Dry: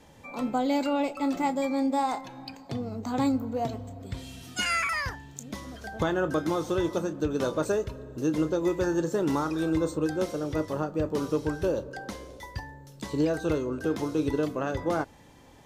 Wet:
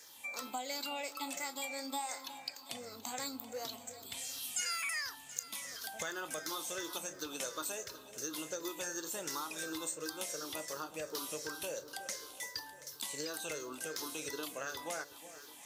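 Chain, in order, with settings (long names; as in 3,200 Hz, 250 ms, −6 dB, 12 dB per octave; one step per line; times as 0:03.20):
rippled gain that drifts along the octave scale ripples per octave 0.55, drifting −2.8 Hz, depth 9 dB
first difference
downward compressor 3 to 1, threshold −48 dBFS, peak gain reduction 13 dB
delay that swaps between a low-pass and a high-pass 365 ms, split 900 Hz, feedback 69%, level −12.5 dB
level +10 dB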